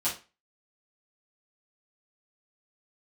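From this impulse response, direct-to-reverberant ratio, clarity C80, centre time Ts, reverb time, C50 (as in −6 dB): −10.5 dB, 16.0 dB, 24 ms, 0.30 s, 8.5 dB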